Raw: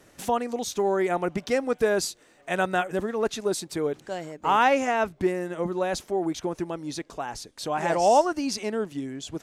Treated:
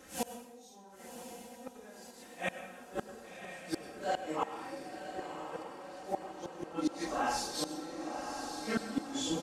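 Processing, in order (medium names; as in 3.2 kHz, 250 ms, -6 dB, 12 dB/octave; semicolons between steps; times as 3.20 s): phase randomisation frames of 200 ms; high-pass 66 Hz 6 dB/octave; comb 3.8 ms, depth 73%; 0.61–1.77 s: compressor with a negative ratio -27 dBFS, ratio -0.5; inverted gate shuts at -21 dBFS, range -29 dB; on a send: echo that smears into a reverb 1081 ms, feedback 54%, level -6.5 dB; on the sum: plate-style reverb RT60 0.94 s, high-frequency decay 0.85×, pre-delay 85 ms, DRR 10.5 dB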